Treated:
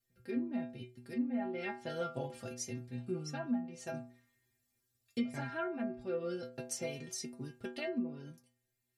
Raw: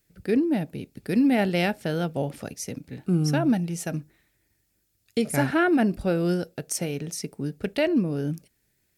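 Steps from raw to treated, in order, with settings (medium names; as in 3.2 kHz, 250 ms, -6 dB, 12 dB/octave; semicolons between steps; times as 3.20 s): inharmonic resonator 120 Hz, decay 0.47 s, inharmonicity 0.008; low-pass that closes with the level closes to 1.5 kHz, closed at -30 dBFS; gain riding within 5 dB 0.5 s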